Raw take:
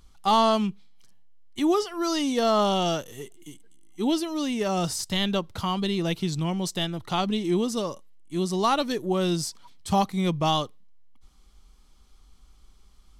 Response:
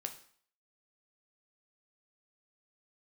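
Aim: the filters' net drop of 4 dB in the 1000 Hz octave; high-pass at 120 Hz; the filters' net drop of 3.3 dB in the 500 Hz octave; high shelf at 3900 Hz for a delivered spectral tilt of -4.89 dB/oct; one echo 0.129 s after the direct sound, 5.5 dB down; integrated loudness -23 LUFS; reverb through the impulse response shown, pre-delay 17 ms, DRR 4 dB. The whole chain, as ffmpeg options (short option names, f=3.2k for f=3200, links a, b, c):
-filter_complex "[0:a]highpass=120,equalizer=f=500:t=o:g=-3.5,equalizer=f=1k:t=o:g=-3.5,highshelf=f=3.9k:g=-7.5,aecho=1:1:129:0.531,asplit=2[a][b];[1:a]atrim=start_sample=2205,adelay=17[c];[b][c]afir=irnorm=-1:irlink=0,volume=-2.5dB[d];[a][d]amix=inputs=2:normalize=0,volume=3dB"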